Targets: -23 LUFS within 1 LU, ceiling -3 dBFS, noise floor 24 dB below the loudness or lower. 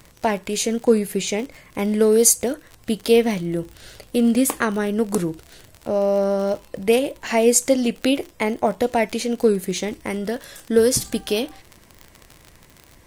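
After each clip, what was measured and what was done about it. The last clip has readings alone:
tick rate 44 per s; loudness -20.5 LUFS; peak level -2.0 dBFS; loudness target -23.0 LUFS
-> de-click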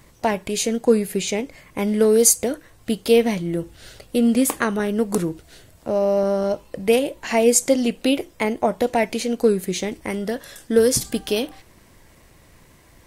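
tick rate 0.84 per s; loudness -20.5 LUFS; peak level -2.0 dBFS; loudness target -23.0 LUFS
-> trim -2.5 dB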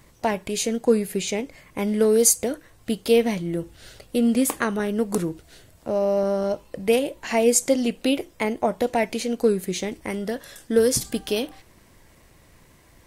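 loudness -23.0 LUFS; peak level -4.5 dBFS; noise floor -55 dBFS

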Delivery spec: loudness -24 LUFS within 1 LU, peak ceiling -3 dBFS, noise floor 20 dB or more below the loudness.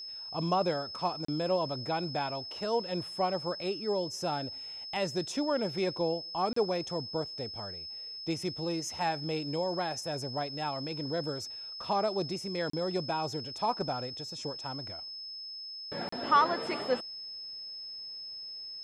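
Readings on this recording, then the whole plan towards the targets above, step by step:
dropouts 4; longest dropout 34 ms; steady tone 5.2 kHz; tone level -40 dBFS; loudness -33.5 LUFS; peak level -13.0 dBFS; loudness target -24.0 LUFS
-> interpolate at 1.25/6.53/12.70/16.09 s, 34 ms; band-stop 5.2 kHz, Q 30; trim +9.5 dB

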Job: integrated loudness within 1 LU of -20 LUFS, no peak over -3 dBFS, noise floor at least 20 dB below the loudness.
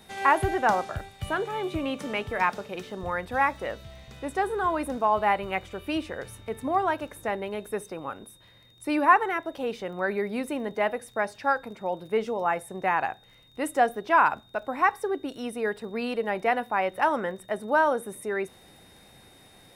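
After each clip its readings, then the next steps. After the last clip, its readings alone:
tick rate 35 per s; steady tone 3.7 kHz; tone level -57 dBFS; loudness -27.5 LUFS; peak level -6.5 dBFS; loudness target -20.0 LUFS
-> de-click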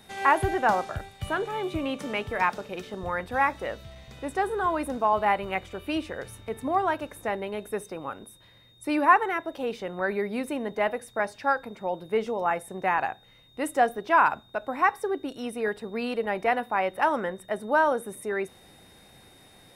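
tick rate 0.10 per s; steady tone 3.7 kHz; tone level -57 dBFS
-> band-stop 3.7 kHz, Q 30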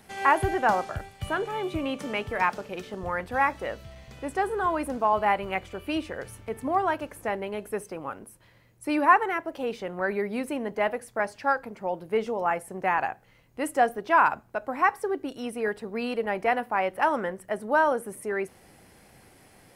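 steady tone not found; loudness -27.5 LUFS; peak level -6.5 dBFS; loudness target -20.0 LUFS
-> trim +7.5 dB; peak limiter -3 dBFS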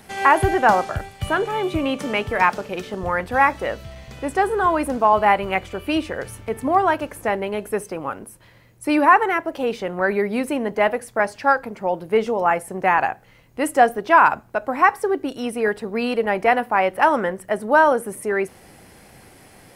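loudness -20.5 LUFS; peak level -3.0 dBFS; noise floor -50 dBFS

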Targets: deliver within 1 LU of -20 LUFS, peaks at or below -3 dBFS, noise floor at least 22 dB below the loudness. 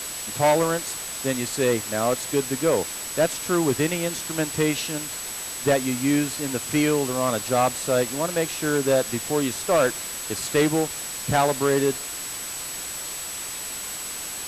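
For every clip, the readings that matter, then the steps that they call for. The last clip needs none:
steady tone 7.9 kHz; tone level -34 dBFS; noise floor -33 dBFS; noise floor target -46 dBFS; loudness -24.0 LUFS; peak level -10.5 dBFS; loudness target -20.0 LUFS
-> band-stop 7.9 kHz, Q 30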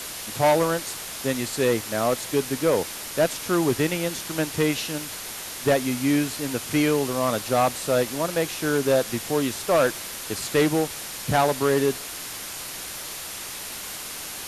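steady tone not found; noise floor -35 dBFS; noise floor target -47 dBFS
-> noise reduction 12 dB, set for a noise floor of -35 dBFS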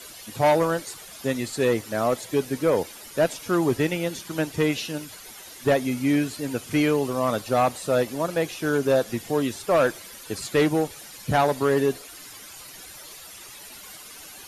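noise floor -43 dBFS; noise floor target -47 dBFS
-> noise reduction 6 dB, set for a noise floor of -43 dBFS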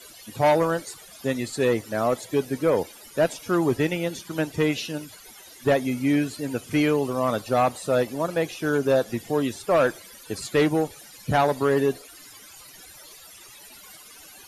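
noise floor -47 dBFS; loudness -24.5 LUFS; peak level -12.0 dBFS; loudness target -20.0 LUFS
-> trim +4.5 dB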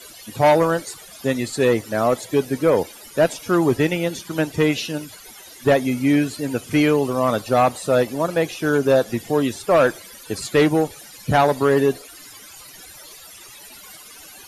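loudness -20.0 LUFS; peak level -7.5 dBFS; noise floor -43 dBFS

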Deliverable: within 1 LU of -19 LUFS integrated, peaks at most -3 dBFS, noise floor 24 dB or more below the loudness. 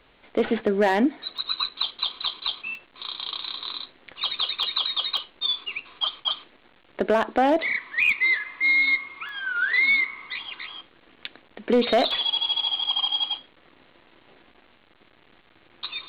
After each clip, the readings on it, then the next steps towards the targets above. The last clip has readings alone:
clipped samples 0.3%; clipping level -13.0 dBFS; dropouts 6; longest dropout 2.0 ms; loudness -24.0 LUFS; peak level -13.0 dBFS; loudness target -19.0 LUFS
-> clip repair -13 dBFS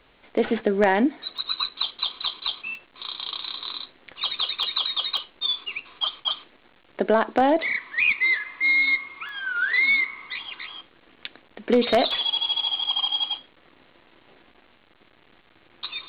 clipped samples 0.0%; dropouts 6; longest dropout 2.0 ms
-> interpolate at 1.38/2.75/4.63/5.17/9.29/12.11 s, 2 ms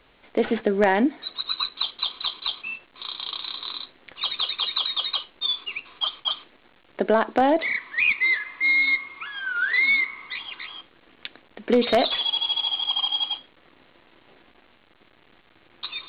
dropouts 0; loudness -23.5 LUFS; peak level -4.0 dBFS; loudness target -19.0 LUFS
-> trim +4.5 dB; peak limiter -3 dBFS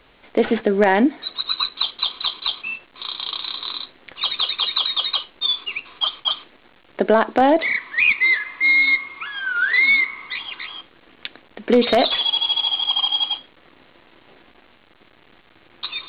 loudness -19.0 LUFS; peak level -3.0 dBFS; noise floor -53 dBFS

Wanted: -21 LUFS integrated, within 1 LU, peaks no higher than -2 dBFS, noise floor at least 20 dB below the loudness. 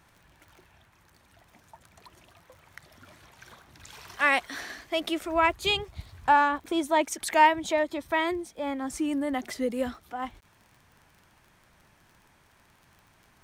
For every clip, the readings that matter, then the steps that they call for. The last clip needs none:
tick rate 32 per s; loudness -27.0 LUFS; peak level -7.0 dBFS; loudness target -21.0 LUFS
-> de-click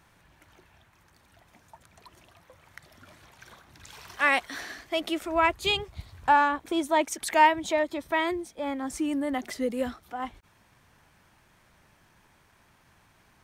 tick rate 0 per s; loudness -27.0 LUFS; peak level -7.0 dBFS; loudness target -21.0 LUFS
-> trim +6 dB; peak limiter -2 dBFS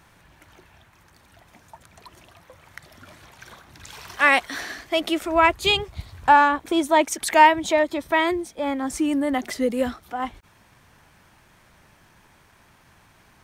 loudness -21.0 LUFS; peak level -2.0 dBFS; noise floor -57 dBFS

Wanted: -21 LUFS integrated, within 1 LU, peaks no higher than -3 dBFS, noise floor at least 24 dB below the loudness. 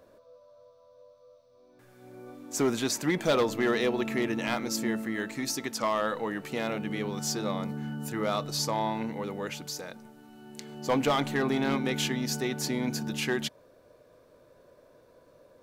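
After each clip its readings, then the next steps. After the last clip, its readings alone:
clipped samples 0.4%; clipping level -19.0 dBFS; loudness -30.0 LUFS; peak level -19.0 dBFS; loudness target -21.0 LUFS
-> clip repair -19 dBFS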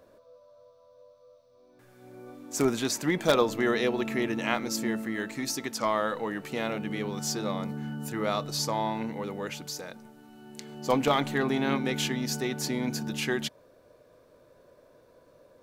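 clipped samples 0.0%; loudness -29.5 LUFS; peak level -10.0 dBFS; loudness target -21.0 LUFS
-> trim +8.5 dB; peak limiter -3 dBFS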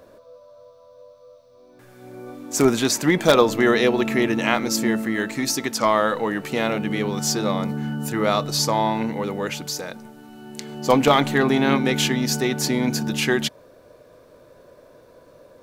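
loudness -21.0 LUFS; peak level -3.0 dBFS; noise floor -51 dBFS

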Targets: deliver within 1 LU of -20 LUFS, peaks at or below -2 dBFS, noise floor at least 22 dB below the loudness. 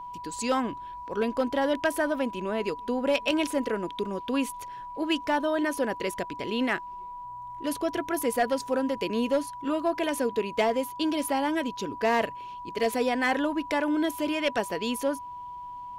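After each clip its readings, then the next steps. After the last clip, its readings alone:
clipped samples 0.3%; clipping level -17.0 dBFS; steady tone 980 Hz; tone level -37 dBFS; loudness -28.5 LUFS; peak level -17.0 dBFS; loudness target -20.0 LUFS
-> clip repair -17 dBFS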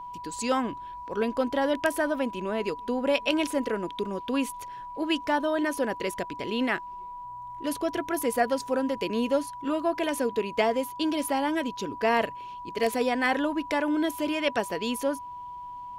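clipped samples 0.0%; steady tone 980 Hz; tone level -37 dBFS
-> band-stop 980 Hz, Q 30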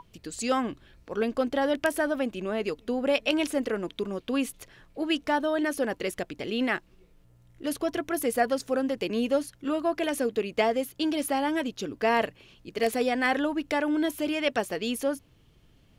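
steady tone not found; loudness -28.5 LUFS; peak level -9.0 dBFS; loudness target -20.0 LUFS
-> trim +8.5 dB; peak limiter -2 dBFS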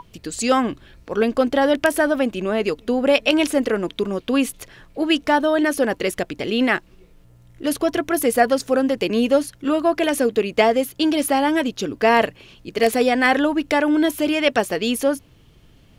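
loudness -20.0 LUFS; peak level -2.0 dBFS; noise floor -51 dBFS

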